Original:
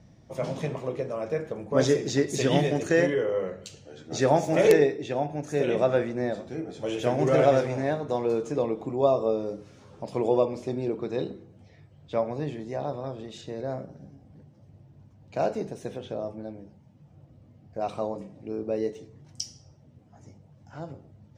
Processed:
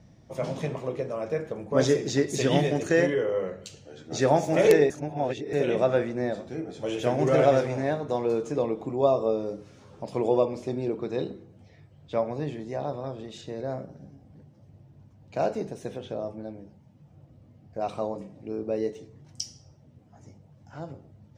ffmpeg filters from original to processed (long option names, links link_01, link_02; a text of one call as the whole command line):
ffmpeg -i in.wav -filter_complex "[0:a]asplit=3[link_01][link_02][link_03];[link_01]atrim=end=4.902[link_04];[link_02]atrim=start=4.898:end=5.532,asetpts=PTS-STARTPTS,areverse[link_05];[link_03]atrim=start=5.528[link_06];[link_04][link_05]acrossfade=duration=0.004:curve1=hsin:curve2=hsin[link_07];[link_07][link_06]acrossfade=duration=0.004:curve1=hsin:curve2=hsin" out.wav